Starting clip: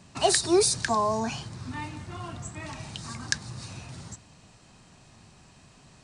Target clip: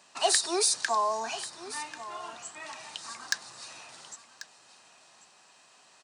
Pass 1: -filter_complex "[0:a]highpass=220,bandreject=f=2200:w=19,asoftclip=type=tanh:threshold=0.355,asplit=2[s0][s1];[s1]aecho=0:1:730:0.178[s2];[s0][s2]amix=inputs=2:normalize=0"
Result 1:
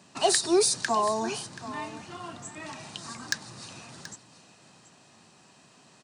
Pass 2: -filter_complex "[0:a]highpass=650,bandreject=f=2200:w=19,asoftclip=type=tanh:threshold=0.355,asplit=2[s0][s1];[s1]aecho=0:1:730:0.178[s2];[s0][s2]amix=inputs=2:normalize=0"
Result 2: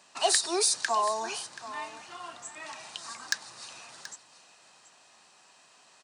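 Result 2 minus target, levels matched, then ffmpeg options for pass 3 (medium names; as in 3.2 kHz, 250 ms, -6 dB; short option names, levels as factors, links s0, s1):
echo 360 ms early
-filter_complex "[0:a]highpass=650,bandreject=f=2200:w=19,asoftclip=type=tanh:threshold=0.355,asplit=2[s0][s1];[s1]aecho=0:1:1090:0.178[s2];[s0][s2]amix=inputs=2:normalize=0"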